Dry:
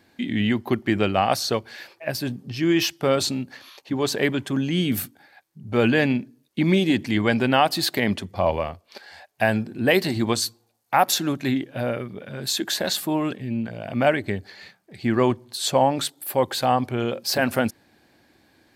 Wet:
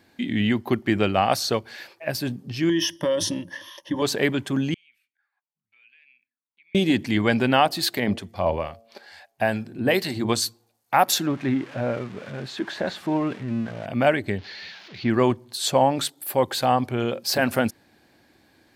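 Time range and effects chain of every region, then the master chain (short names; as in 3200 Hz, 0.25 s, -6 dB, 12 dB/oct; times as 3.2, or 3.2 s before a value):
2.69–4.02 ripple EQ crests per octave 1.2, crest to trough 17 dB + compressor 4:1, threshold -20 dBFS
4.74–6.75 passive tone stack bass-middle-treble 5-5-5 + compressor 5:1, threshold -45 dBFS + auto-wah 700–2400 Hz, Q 7.2, up, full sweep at -48.5 dBFS
7.66–10.29 de-hum 113.9 Hz, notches 7 + harmonic tremolo 2.3 Hz, depth 50%, crossover 1200 Hz
11.26–13.86 switching spikes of -18.5 dBFS + LPF 1900 Hz
14.38–15.1 switching spikes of -24 dBFS + inverse Chebyshev low-pass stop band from 7900 Hz + notch 1200 Hz, Q 14
whole clip: dry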